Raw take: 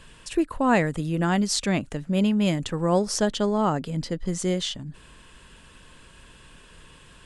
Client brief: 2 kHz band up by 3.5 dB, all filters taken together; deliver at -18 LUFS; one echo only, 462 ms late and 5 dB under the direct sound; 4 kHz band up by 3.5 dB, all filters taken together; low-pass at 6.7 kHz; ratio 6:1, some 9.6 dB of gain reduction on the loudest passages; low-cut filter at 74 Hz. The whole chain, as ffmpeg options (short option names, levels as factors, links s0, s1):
-af "highpass=74,lowpass=6700,equalizer=f=2000:t=o:g=3.5,equalizer=f=4000:t=o:g=4,acompressor=threshold=0.0501:ratio=6,aecho=1:1:462:0.562,volume=3.76"